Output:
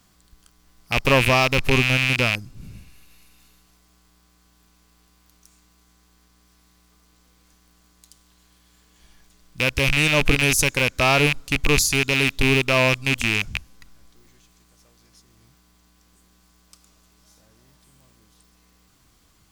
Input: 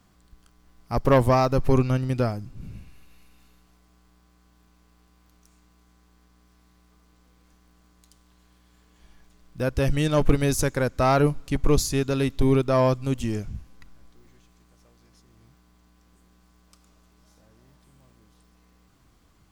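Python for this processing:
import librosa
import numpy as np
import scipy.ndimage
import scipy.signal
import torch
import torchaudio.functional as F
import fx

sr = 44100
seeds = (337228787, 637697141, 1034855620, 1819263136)

y = fx.rattle_buzz(x, sr, strikes_db=-28.0, level_db=-12.0)
y = fx.high_shelf(y, sr, hz=2300.0, db=10.0)
y = F.gain(torch.from_numpy(y), -1.0).numpy()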